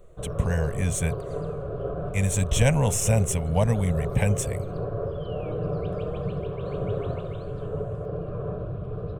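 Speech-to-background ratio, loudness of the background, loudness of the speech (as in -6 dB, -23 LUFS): 6.5 dB, -32.0 LUFS, -25.5 LUFS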